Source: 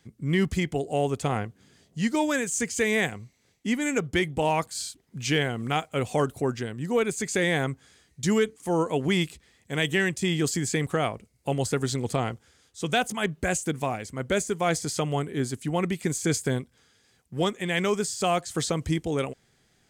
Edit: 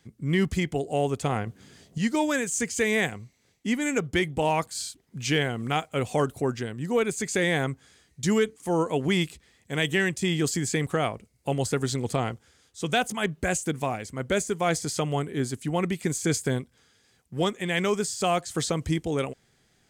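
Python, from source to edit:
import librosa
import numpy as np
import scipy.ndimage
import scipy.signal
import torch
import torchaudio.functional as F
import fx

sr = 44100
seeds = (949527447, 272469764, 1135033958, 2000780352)

y = fx.edit(x, sr, fx.clip_gain(start_s=1.47, length_s=0.51, db=6.5), tone=tone)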